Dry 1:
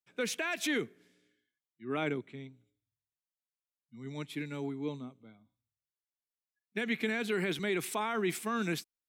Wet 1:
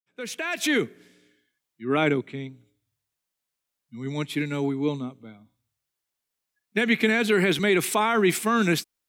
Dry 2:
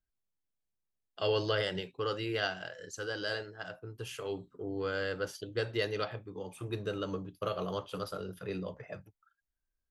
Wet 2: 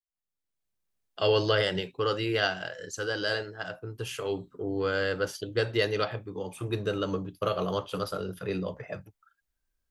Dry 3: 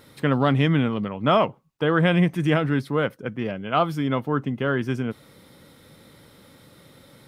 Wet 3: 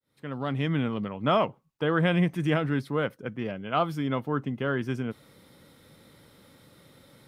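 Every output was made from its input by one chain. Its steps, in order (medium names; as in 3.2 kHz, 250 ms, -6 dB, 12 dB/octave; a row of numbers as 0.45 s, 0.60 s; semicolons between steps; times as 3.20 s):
fade-in on the opening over 0.95 s; peak normalisation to -12 dBFS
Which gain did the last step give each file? +11.0 dB, +6.0 dB, -4.5 dB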